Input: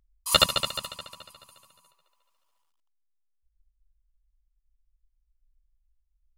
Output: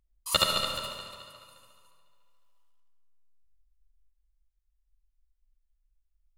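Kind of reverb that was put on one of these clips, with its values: algorithmic reverb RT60 1.8 s, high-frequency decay 0.75×, pre-delay 20 ms, DRR 3 dB; trim -5 dB

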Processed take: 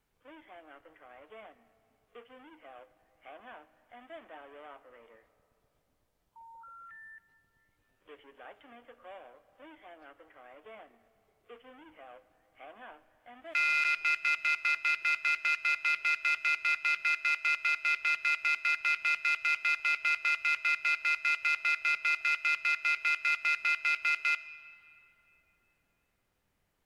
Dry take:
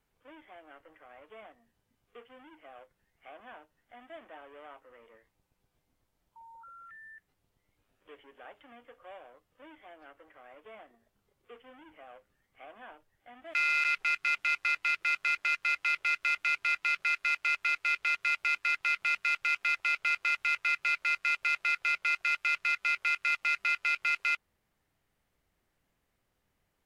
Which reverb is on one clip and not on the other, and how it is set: algorithmic reverb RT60 3.2 s, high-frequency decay 0.65×, pre-delay 10 ms, DRR 16 dB

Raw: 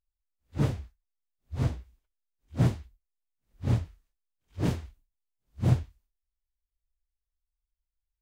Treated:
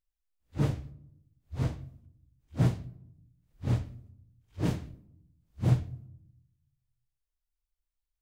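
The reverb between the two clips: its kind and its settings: simulated room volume 1900 m³, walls furnished, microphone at 0.54 m; trim -2 dB

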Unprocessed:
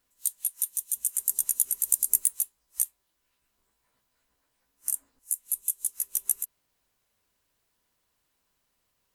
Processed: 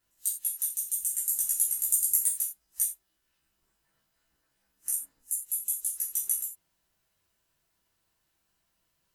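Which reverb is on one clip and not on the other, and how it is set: gated-style reverb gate 120 ms falling, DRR -4 dB; trim -6 dB

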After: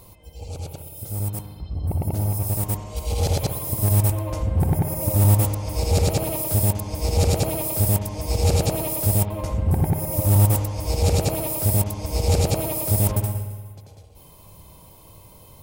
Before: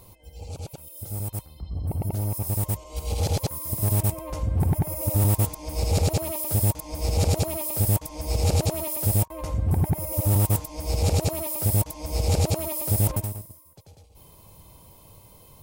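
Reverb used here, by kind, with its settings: spring tank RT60 1.6 s, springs 59 ms, chirp 75 ms, DRR 6 dB; trim +2.5 dB

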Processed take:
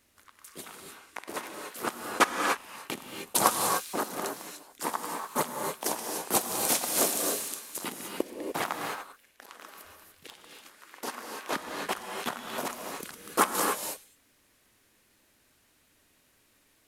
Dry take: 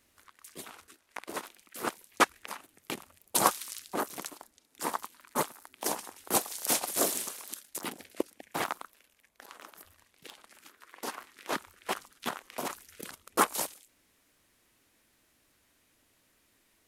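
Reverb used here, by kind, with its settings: gated-style reverb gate 320 ms rising, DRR 2 dB; trim +1 dB

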